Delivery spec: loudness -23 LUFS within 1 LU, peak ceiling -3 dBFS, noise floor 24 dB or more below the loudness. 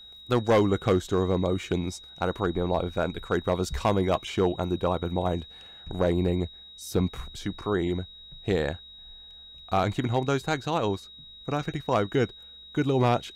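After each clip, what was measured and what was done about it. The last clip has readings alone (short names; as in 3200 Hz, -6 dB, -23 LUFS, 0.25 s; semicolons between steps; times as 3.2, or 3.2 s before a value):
clipped 0.5%; flat tops at -15.0 dBFS; steady tone 3800 Hz; tone level -45 dBFS; loudness -27.5 LUFS; peak -15.0 dBFS; loudness target -23.0 LUFS
-> clip repair -15 dBFS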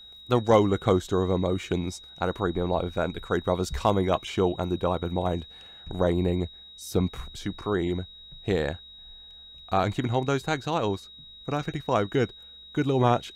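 clipped 0.0%; steady tone 3800 Hz; tone level -45 dBFS
-> notch 3800 Hz, Q 30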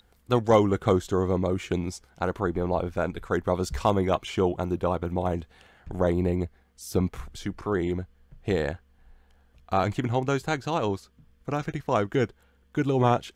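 steady tone none; loudness -27.5 LUFS; peak -6.5 dBFS; loudness target -23.0 LUFS
-> gain +4.5 dB; limiter -3 dBFS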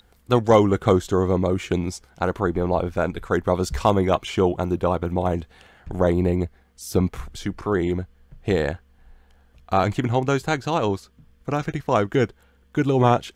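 loudness -23.0 LUFS; peak -3.0 dBFS; noise floor -58 dBFS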